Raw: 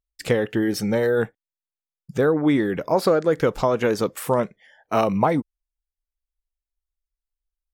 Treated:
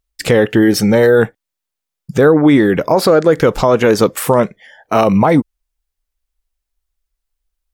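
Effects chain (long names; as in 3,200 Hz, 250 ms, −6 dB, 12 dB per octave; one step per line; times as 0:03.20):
boost into a limiter +12.5 dB
level −1 dB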